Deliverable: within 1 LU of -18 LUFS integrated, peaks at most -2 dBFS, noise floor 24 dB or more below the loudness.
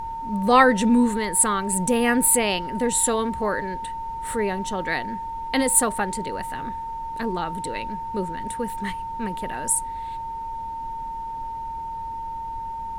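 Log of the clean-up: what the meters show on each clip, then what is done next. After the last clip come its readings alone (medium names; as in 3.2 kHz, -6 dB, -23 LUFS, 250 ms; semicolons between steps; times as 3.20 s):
steady tone 910 Hz; tone level -29 dBFS; noise floor -32 dBFS; noise floor target -48 dBFS; loudness -24.0 LUFS; peak level -2.5 dBFS; loudness target -18.0 LUFS
-> band-stop 910 Hz, Q 30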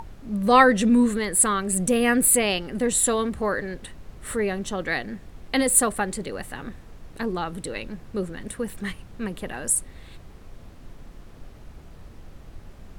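steady tone not found; noise floor -46 dBFS; noise floor target -47 dBFS
-> noise print and reduce 6 dB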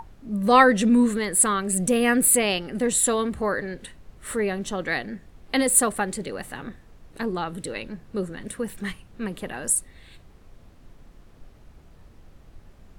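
noise floor -52 dBFS; loudness -22.5 LUFS; peak level -2.5 dBFS; loudness target -18.0 LUFS
-> trim +4.5 dB; peak limiter -2 dBFS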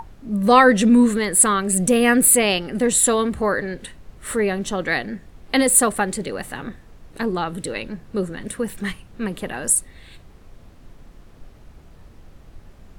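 loudness -18.5 LUFS; peak level -2.0 dBFS; noise floor -47 dBFS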